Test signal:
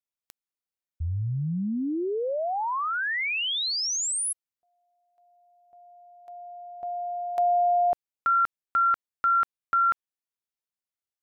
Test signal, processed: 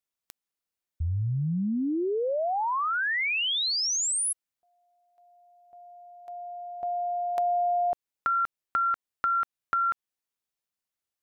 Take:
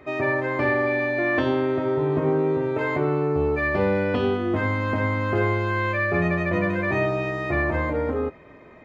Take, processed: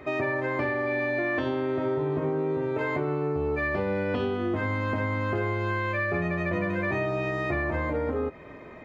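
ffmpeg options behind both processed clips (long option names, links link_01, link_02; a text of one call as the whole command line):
ffmpeg -i in.wav -af "acompressor=threshold=-27dB:ratio=6:attack=8.3:release=369:knee=6:detection=peak,volume=3dB" out.wav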